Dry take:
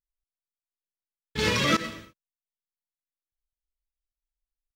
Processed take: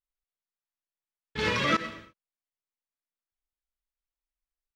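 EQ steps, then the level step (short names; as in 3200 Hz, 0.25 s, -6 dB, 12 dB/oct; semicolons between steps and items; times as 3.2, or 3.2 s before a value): tilt shelf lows -5 dB, about 740 Hz; high shelf 2600 Hz -11 dB; high shelf 7300 Hz -11.5 dB; 0.0 dB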